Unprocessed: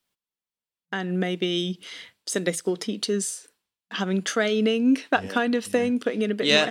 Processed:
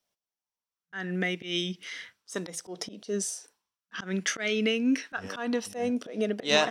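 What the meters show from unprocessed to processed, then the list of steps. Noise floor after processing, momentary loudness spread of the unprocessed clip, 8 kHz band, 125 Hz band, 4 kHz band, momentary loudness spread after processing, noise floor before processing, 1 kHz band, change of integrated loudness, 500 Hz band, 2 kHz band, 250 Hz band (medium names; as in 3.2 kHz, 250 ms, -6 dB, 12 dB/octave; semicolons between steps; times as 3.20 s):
under -85 dBFS, 11 LU, -3.5 dB, -6.5 dB, -5.0 dB, 14 LU, under -85 dBFS, -6.0 dB, -5.5 dB, -6.0 dB, -4.0 dB, -6.0 dB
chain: peaking EQ 5.7 kHz +10.5 dB 0.23 oct; slow attack 132 ms; sweeping bell 0.33 Hz 630–2300 Hz +11 dB; trim -5.5 dB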